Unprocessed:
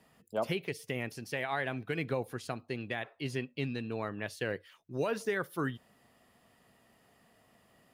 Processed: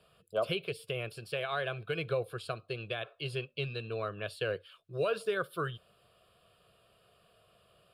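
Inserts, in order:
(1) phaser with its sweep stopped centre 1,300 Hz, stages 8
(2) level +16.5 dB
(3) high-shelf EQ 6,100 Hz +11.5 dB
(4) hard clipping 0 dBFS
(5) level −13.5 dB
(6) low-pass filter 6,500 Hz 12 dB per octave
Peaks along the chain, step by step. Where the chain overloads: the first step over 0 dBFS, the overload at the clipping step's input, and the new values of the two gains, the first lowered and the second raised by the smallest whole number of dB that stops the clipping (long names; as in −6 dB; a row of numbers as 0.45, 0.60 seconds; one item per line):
−23.0, −6.5, −6.0, −6.0, −19.5, −19.5 dBFS
no step passes full scale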